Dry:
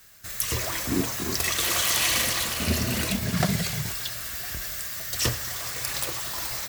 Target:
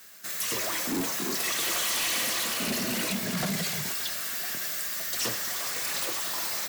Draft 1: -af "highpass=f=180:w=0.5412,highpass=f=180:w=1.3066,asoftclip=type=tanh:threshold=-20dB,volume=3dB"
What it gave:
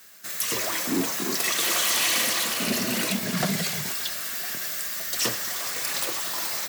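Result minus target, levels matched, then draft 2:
soft clip: distortion -7 dB
-af "highpass=f=180:w=0.5412,highpass=f=180:w=1.3066,asoftclip=type=tanh:threshold=-28.5dB,volume=3dB"

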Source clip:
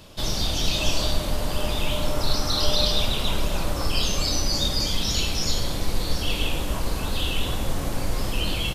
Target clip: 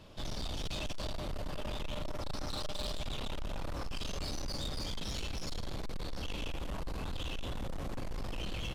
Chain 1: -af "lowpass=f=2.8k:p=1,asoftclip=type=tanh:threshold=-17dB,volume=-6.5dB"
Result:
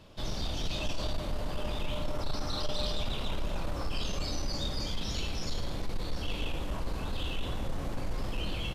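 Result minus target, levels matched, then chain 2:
soft clip: distortion -9 dB
-af "lowpass=f=2.8k:p=1,asoftclip=type=tanh:threshold=-27dB,volume=-6.5dB"

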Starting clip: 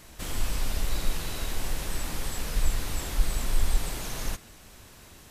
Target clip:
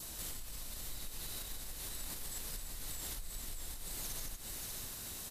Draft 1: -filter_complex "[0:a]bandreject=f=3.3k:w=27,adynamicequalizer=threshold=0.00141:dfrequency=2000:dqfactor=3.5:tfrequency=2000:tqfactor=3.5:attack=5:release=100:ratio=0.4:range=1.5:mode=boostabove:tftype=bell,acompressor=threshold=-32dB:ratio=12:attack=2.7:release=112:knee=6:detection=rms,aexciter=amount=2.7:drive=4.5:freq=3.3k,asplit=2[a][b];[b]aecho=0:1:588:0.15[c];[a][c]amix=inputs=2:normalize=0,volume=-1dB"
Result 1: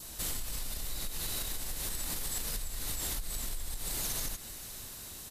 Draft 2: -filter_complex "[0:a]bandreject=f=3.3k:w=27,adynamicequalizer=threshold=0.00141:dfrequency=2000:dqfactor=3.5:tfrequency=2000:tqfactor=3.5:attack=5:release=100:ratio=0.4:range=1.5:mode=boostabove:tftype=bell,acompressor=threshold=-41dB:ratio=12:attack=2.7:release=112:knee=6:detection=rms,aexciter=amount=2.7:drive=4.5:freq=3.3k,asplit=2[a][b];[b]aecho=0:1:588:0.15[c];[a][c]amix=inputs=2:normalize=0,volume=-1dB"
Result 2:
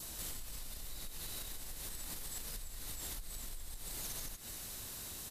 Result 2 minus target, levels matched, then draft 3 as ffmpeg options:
echo-to-direct -11.5 dB
-filter_complex "[0:a]bandreject=f=3.3k:w=27,adynamicequalizer=threshold=0.00141:dfrequency=2000:dqfactor=3.5:tfrequency=2000:tqfactor=3.5:attack=5:release=100:ratio=0.4:range=1.5:mode=boostabove:tftype=bell,acompressor=threshold=-41dB:ratio=12:attack=2.7:release=112:knee=6:detection=rms,aexciter=amount=2.7:drive=4.5:freq=3.3k,asplit=2[a][b];[b]aecho=0:1:588:0.562[c];[a][c]amix=inputs=2:normalize=0,volume=-1dB"

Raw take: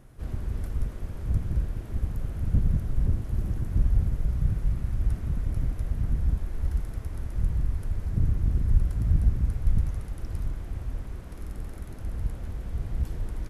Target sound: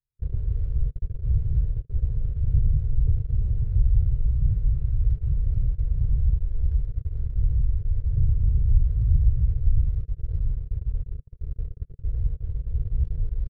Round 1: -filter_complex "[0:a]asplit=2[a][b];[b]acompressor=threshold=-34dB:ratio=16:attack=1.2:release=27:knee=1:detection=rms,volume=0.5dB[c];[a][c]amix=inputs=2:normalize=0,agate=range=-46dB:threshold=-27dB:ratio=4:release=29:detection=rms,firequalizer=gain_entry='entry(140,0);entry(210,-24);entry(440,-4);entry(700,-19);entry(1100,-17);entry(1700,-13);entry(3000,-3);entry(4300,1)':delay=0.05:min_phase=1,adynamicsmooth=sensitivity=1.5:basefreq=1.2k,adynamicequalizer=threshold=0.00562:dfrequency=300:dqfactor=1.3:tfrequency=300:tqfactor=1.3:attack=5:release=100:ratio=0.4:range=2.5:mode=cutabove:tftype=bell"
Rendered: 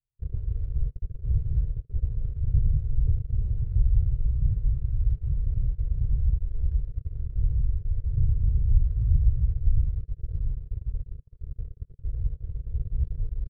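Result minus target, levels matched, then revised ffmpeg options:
compressor: peak gain reduction +8.5 dB
-filter_complex "[0:a]asplit=2[a][b];[b]acompressor=threshold=-25dB:ratio=16:attack=1.2:release=27:knee=1:detection=rms,volume=0.5dB[c];[a][c]amix=inputs=2:normalize=0,agate=range=-46dB:threshold=-27dB:ratio=4:release=29:detection=rms,firequalizer=gain_entry='entry(140,0);entry(210,-24);entry(440,-4);entry(700,-19);entry(1100,-17);entry(1700,-13);entry(3000,-3);entry(4300,1)':delay=0.05:min_phase=1,adynamicsmooth=sensitivity=1.5:basefreq=1.2k,adynamicequalizer=threshold=0.00562:dfrequency=300:dqfactor=1.3:tfrequency=300:tqfactor=1.3:attack=5:release=100:ratio=0.4:range=2.5:mode=cutabove:tftype=bell"

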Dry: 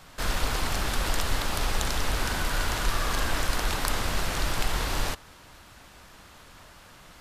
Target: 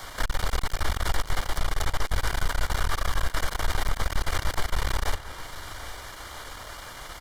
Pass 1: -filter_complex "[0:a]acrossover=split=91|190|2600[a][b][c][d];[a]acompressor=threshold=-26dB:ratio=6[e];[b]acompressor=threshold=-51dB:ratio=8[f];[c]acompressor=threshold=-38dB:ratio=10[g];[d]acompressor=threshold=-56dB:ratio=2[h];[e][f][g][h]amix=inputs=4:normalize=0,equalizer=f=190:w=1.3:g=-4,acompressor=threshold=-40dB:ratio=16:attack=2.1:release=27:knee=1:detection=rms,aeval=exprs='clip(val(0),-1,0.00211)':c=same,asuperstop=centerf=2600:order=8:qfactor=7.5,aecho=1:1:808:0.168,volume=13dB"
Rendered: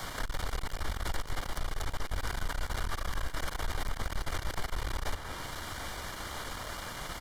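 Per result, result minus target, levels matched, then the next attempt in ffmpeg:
compressor: peak gain reduction +9.5 dB; 250 Hz band +3.0 dB
-filter_complex "[0:a]acrossover=split=91|190|2600[a][b][c][d];[a]acompressor=threshold=-26dB:ratio=6[e];[b]acompressor=threshold=-51dB:ratio=8[f];[c]acompressor=threshold=-38dB:ratio=10[g];[d]acompressor=threshold=-56dB:ratio=2[h];[e][f][g][h]amix=inputs=4:normalize=0,equalizer=f=190:w=1.3:g=-4,acompressor=threshold=-30.5dB:ratio=16:attack=2.1:release=27:knee=1:detection=rms,aeval=exprs='clip(val(0),-1,0.00211)':c=same,asuperstop=centerf=2600:order=8:qfactor=7.5,aecho=1:1:808:0.168,volume=13dB"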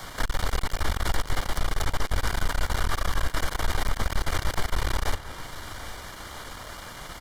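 250 Hz band +3.0 dB
-filter_complex "[0:a]acrossover=split=91|190|2600[a][b][c][d];[a]acompressor=threshold=-26dB:ratio=6[e];[b]acompressor=threshold=-51dB:ratio=8[f];[c]acompressor=threshold=-38dB:ratio=10[g];[d]acompressor=threshold=-56dB:ratio=2[h];[e][f][g][h]amix=inputs=4:normalize=0,equalizer=f=190:w=1.3:g=-13.5,acompressor=threshold=-30.5dB:ratio=16:attack=2.1:release=27:knee=1:detection=rms,aeval=exprs='clip(val(0),-1,0.00211)':c=same,asuperstop=centerf=2600:order=8:qfactor=7.5,aecho=1:1:808:0.168,volume=13dB"

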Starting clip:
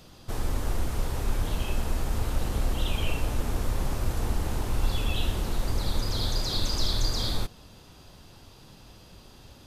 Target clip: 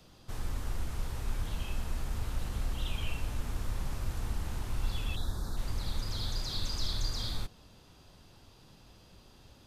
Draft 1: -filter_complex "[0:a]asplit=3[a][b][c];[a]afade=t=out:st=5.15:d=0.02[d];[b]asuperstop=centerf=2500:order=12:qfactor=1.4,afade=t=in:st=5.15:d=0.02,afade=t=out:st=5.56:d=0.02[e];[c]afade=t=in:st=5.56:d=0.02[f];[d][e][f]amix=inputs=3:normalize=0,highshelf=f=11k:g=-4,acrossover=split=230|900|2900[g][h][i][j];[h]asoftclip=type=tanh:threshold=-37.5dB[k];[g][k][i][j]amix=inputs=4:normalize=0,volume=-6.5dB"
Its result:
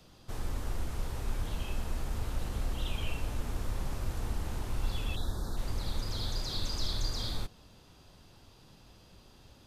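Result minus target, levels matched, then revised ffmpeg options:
soft clip: distortion -7 dB
-filter_complex "[0:a]asplit=3[a][b][c];[a]afade=t=out:st=5.15:d=0.02[d];[b]asuperstop=centerf=2500:order=12:qfactor=1.4,afade=t=in:st=5.15:d=0.02,afade=t=out:st=5.56:d=0.02[e];[c]afade=t=in:st=5.56:d=0.02[f];[d][e][f]amix=inputs=3:normalize=0,highshelf=f=11k:g=-4,acrossover=split=230|900|2900[g][h][i][j];[h]asoftclip=type=tanh:threshold=-45.5dB[k];[g][k][i][j]amix=inputs=4:normalize=0,volume=-6.5dB"

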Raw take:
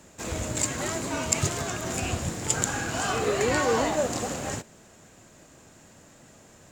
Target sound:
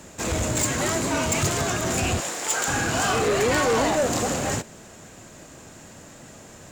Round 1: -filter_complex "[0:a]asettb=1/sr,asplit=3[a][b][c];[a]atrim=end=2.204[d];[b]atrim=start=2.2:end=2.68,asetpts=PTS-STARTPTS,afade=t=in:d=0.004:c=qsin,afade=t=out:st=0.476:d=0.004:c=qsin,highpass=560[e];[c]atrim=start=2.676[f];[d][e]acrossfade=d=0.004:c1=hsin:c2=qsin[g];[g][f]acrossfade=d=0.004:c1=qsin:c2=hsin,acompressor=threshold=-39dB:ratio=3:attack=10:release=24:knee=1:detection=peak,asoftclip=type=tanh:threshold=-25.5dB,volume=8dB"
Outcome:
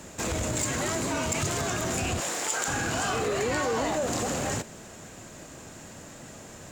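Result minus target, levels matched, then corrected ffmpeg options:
compressor: peak gain reduction +13.5 dB
-filter_complex "[0:a]asettb=1/sr,asplit=3[a][b][c];[a]atrim=end=2.204[d];[b]atrim=start=2.2:end=2.68,asetpts=PTS-STARTPTS,afade=t=in:d=0.004:c=qsin,afade=t=out:st=0.476:d=0.004:c=qsin,highpass=560[e];[c]atrim=start=2.676[f];[d][e]acrossfade=d=0.004:c1=hsin:c2=qsin[g];[g][f]acrossfade=d=0.004:c1=qsin:c2=hsin,asoftclip=type=tanh:threshold=-25.5dB,volume=8dB"

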